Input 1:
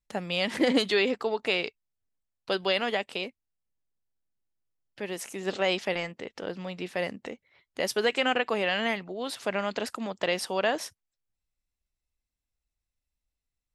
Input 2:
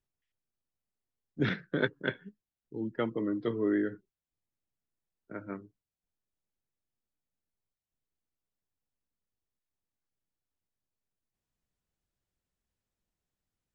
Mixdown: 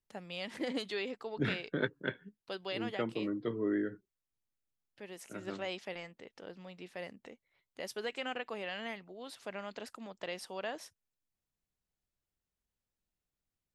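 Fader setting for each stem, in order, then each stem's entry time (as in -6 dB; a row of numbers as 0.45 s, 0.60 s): -13.0 dB, -4.0 dB; 0.00 s, 0.00 s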